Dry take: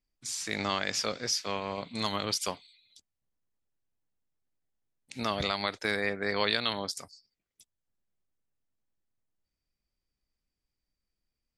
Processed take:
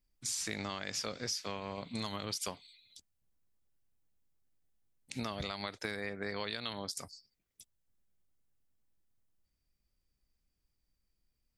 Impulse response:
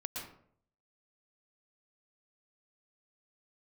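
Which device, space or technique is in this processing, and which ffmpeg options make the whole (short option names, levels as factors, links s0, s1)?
ASMR close-microphone chain: -af "lowshelf=f=200:g=6.5,acompressor=threshold=0.0178:ratio=6,highshelf=f=8400:g=5.5"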